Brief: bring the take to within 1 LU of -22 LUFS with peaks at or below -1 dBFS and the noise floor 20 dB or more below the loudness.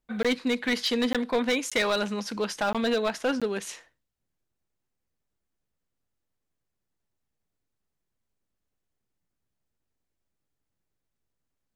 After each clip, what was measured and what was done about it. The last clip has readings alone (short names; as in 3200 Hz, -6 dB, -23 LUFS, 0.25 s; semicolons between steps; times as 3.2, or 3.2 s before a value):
clipped 0.8%; flat tops at -19.5 dBFS; dropouts 5; longest dropout 16 ms; loudness -27.0 LUFS; peak -19.5 dBFS; loudness target -22.0 LUFS
-> clip repair -19.5 dBFS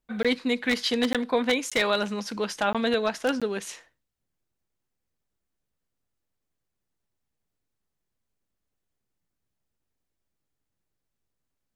clipped 0.0%; dropouts 5; longest dropout 16 ms
-> interpolate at 0.23/1.13/1.7/2.73/3.4, 16 ms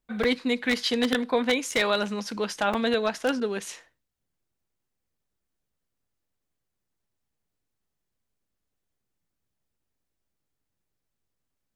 dropouts 0; loudness -26.0 LUFS; peak -5.5 dBFS; loudness target -22.0 LUFS
-> gain +4 dB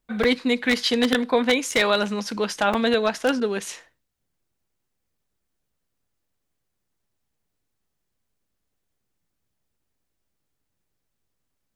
loudness -22.0 LUFS; peak -1.5 dBFS; noise floor -78 dBFS